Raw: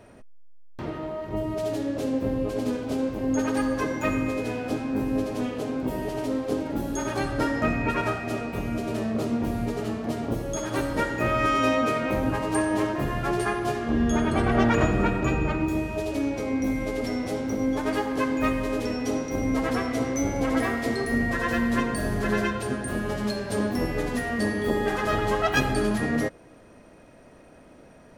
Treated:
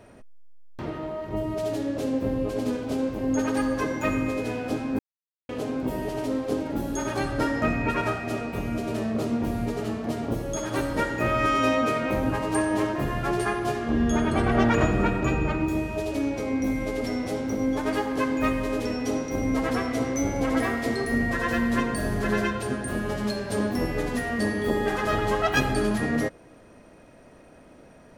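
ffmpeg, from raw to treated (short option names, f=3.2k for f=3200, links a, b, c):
-filter_complex "[0:a]asplit=3[a][b][c];[a]atrim=end=4.99,asetpts=PTS-STARTPTS,afade=t=out:st=4.986:d=0.004:c=hsin[d];[b]atrim=start=4.99:end=5.49,asetpts=PTS-STARTPTS,volume=0[e];[c]atrim=start=5.49,asetpts=PTS-STARTPTS,afade=t=in:d=0.004:c=hsin[f];[d][e][f]concat=n=3:v=0:a=1"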